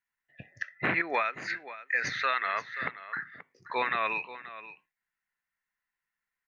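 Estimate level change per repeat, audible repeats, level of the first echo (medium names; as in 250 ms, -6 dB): no regular repeats, 1, -15.0 dB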